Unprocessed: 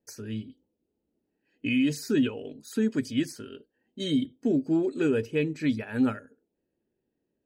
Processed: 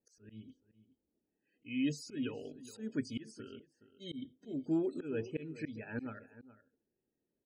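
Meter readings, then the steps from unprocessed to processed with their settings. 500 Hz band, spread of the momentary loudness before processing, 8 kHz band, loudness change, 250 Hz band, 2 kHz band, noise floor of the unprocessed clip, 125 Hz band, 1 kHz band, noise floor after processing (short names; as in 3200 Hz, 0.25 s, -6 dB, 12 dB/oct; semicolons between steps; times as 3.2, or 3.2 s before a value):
-11.5 dB, 12 LU, -11.5 dB, -11.5 dB, -12.0 dB, -12.5 dB, -81 dBFS, -11.0 dB, -11.5 dB, under -85 dBFS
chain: loudest bins only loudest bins 64; auto swell 0.228 s; outdoor echo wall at 72 m, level -16 dB; gain -7 dB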